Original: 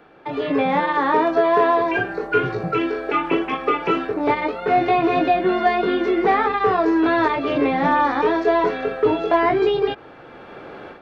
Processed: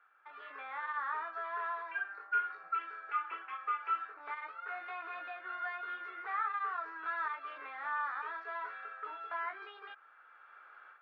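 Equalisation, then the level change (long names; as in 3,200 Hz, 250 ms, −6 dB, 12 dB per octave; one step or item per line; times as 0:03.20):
four-pole ladder band-pass 1,500 Hz, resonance 65%
−7.5 dB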